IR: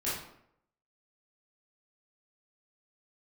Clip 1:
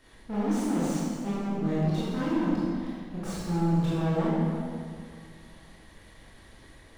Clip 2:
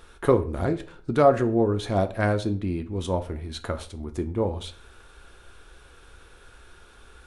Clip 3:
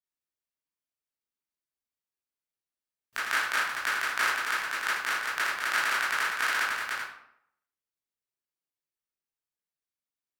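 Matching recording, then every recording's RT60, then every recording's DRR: 3; 2.2, 0.45, 0.70 s; -9.5, 8.0, -10.5 dB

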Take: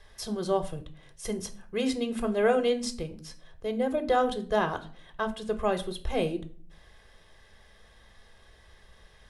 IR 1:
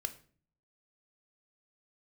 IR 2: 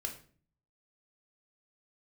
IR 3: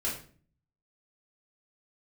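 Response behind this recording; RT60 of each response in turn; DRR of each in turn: 1; 0.45, 0.45, 0.45 s; 8.5, 2.0, -7.0 dB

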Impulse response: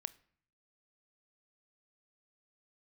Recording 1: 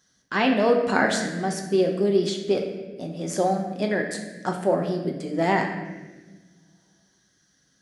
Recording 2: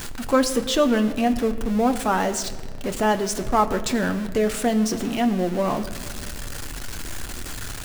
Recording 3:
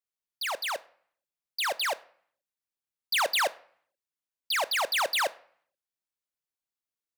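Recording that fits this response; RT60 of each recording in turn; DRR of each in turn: 3; 1.3, 1.9, 0.60 s; 1.5, 6.5, 17.0 dB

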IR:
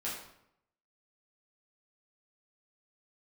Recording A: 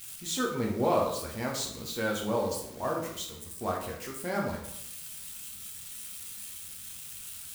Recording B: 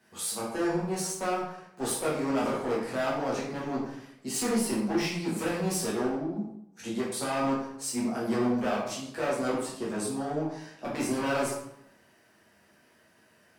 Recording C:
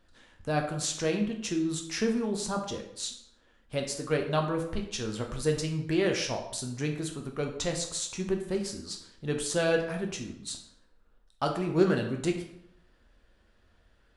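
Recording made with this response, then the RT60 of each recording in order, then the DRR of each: B; 0.75, 0.75, 0.75 s; -2.0, -7.5, 2.5 dB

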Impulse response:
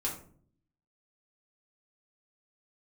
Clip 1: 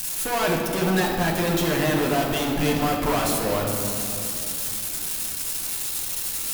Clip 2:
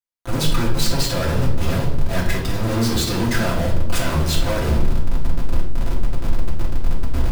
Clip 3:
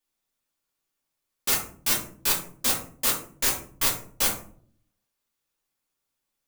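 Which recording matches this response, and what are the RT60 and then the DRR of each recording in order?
3; 2.9, 0.75, 0.50 s; -2.0, -6.0, -4.5 dB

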